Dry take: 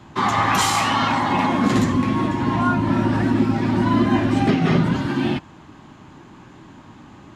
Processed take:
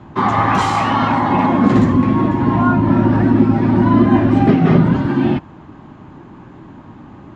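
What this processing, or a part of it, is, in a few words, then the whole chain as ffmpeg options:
through cloth: -af "lowpass=8900,highshelf=frequency=2500:gain=-17,volume=6.5dB"

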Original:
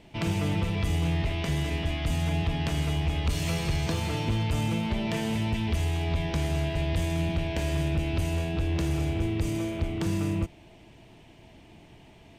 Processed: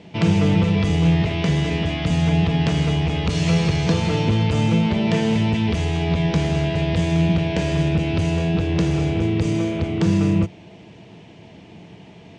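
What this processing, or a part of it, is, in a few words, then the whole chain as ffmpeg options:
car door speaker: -af "highpass=99,equalizer=frequency=100:width_type=q:width=4:gain=4,equalizer=frequency=180:width_type=q:width=4:gain=10,equalizer=frequency=460:width_type=q:width=4:gain=6,lowpass=frequency=7000:width=0.5412,lowpass=frequency=7000:width=1.3066,volume=7dB"

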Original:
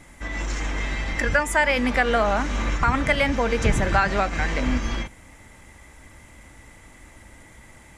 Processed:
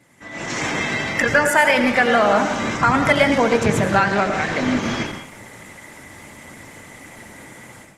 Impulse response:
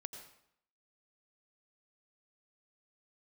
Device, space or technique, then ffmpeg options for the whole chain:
far-field microphone of a smart speaker: -filter_complex "[0:a]asettb=1/sr,asplit=3[link_01][link_02][link_03];[link_01]atrim=end=2.514[link_04];[link_02]atrim=start=2.51:end=3.93,asetpts=PTS-STARTPTS,afade=type=in:duration=0.004:curve=qsin,afade=type=out:start_time=1.416:duration=0.004:curve=qsin,equalizer=frequency=2500:width=1.4:gain=-2.5[link_05];[link_03]atrim=start=3.926[link_06];[link_04][link_05]acrossfade=duration=0.004:curve1=hsin:curve2=qsin[link_07];[link_07][link_06]acrossfade=duration=0.004:curve1=qsin:curve2=hsin[link_08];[1:a]atrim=start_sample=2205[link_09];[link_08][link_09]afir=irnorm=-1:irlink=0,highpass=frequency=110:width=0.5412,highpass=frequency=110:width=1.3066,dynaudnorm=framelen=300:gausssize=3:maxgain=15.5dB,volume=-1dB" -ar 48000 -c:a libopus -b:a 16k

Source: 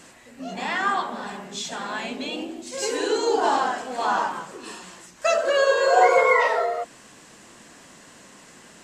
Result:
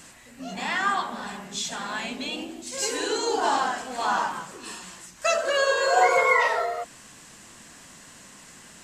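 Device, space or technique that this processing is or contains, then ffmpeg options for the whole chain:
smiley-face EQ: -af "lowshelf=frequency=110:gain=5.5,equalizer=frequency=430:width_type=o:width=1.7:gain=-5.5,highshelf=frequency=8000:gain=6.5"

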